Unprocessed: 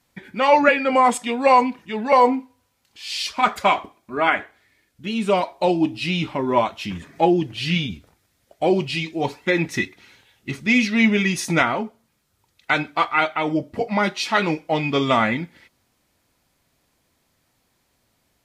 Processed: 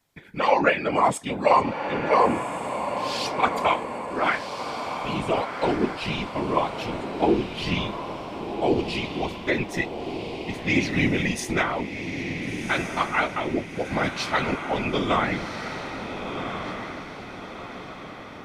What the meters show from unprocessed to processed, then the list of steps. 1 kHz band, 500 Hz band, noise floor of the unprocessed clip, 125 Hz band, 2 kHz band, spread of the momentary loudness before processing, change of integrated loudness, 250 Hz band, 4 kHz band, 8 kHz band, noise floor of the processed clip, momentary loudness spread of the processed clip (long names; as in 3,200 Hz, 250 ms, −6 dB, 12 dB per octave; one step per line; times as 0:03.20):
−4.0 dB, −3.5 dB, −68 dBFS, −2.5 dB, −4.0 dB, 12 LU, −5.0 dB, −4.5 dB, −4.0 dB, −3.5 dB, −39 dBFS, 12 LU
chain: random phases in short frames
feedback delay with all-pass diffusion 1,425 ms, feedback 50%, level −7 dB
level −5 dB